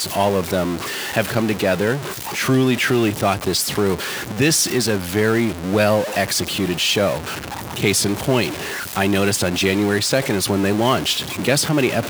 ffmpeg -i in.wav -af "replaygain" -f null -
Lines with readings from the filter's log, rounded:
track_gain = +0.2 dB
track_peak = 0.590